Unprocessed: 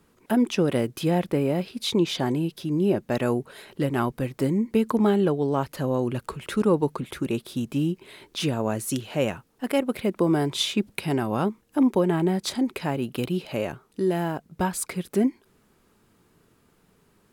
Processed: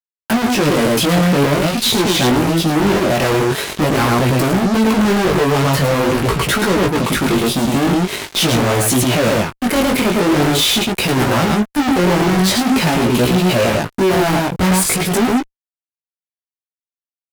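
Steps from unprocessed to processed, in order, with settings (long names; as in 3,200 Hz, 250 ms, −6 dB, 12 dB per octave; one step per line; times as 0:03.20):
single-tap delay 108 ms −5 dB
fuzz pedal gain 43 dB, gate −45 dBFS
chorus effect 0.45 Hz, delay 16 ms, depth 6.6 ms
level +3 dB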